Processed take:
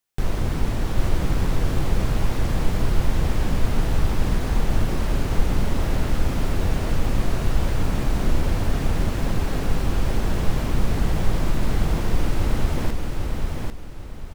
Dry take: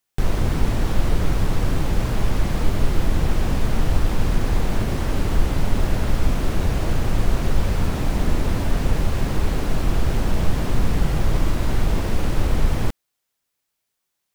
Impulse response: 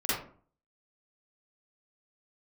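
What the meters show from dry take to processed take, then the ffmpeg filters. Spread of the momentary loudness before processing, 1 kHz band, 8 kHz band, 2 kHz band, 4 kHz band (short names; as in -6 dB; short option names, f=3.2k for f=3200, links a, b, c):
1 LU, -1.5 dB, -1.5 dB, -1.0 dB, -1.5 dB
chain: -af "aecho=1:1:796|1592|2388|3184:0.668|0.207|0.0642|0.0199,volume=-3dB"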